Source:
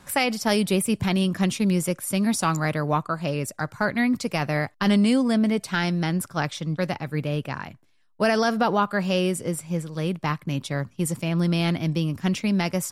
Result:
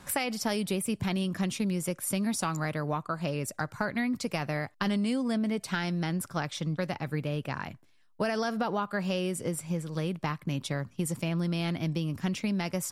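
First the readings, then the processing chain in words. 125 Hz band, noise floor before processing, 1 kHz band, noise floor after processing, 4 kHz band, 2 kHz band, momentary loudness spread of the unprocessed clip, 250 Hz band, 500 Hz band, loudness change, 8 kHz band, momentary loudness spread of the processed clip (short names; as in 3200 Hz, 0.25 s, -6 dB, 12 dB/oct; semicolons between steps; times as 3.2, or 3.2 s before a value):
-6.5 dB, -58 dBFS, -7.5 dB, -60 dBFS, -7.0 dB, -7.0 dB, 7 LU, -7.5 dB, -7.5 dB, -7.0 dB, -4.5 dB, 4 LU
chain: compressor 4:1, threshold -28 dBFS, peak gain reduction 10 dB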